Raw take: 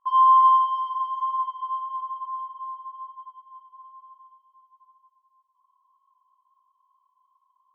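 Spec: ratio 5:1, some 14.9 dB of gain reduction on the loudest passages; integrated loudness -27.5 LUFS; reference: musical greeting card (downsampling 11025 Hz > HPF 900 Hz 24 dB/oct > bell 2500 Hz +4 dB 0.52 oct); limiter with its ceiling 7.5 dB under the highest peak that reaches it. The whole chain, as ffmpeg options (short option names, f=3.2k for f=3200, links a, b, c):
-af "acompressor=threshold=-31dB:ratio=5,alimiter=level_in=8dB:limit=-24dB:level=0:latency=1,volume=-8dB,aresample=11025,aresample=44100,highpass=f=900:w=0.5412,highpass=f=900:w=1.3066,equalizer=f=2.5k:t=o:w=0.52:g=4,volume=11dB"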